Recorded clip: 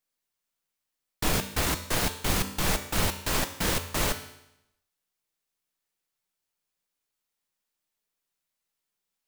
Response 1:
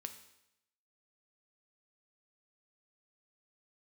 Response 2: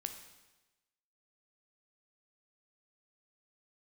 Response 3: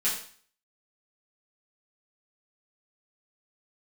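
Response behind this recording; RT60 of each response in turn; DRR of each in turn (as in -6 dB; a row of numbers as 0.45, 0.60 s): 1; 0.85, 1.1, 0.45 s; 7.0, 6.0, -9.5 dB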